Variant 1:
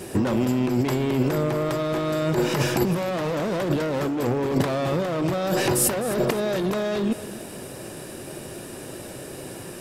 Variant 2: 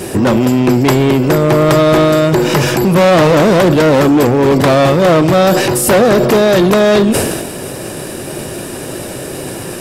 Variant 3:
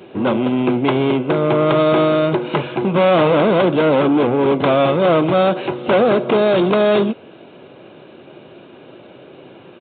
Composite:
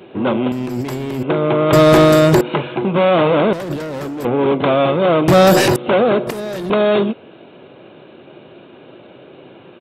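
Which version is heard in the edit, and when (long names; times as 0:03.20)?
3
0:00.52–0:01.23: punch in from 1
0:01.73–0:02.41: punch in from 2
0:03.53–0:04.25: punch in from 1
0:05.28–0:05.76: punch in from 2
0:06.27–0:06.70: punch in from 1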